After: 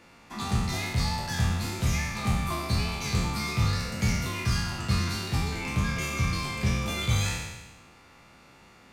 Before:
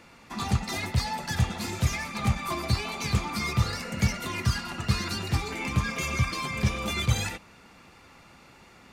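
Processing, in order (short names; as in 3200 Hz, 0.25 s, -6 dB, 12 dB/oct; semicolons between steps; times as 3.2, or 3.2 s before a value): spectral trails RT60 1.17 s; gain -4 dB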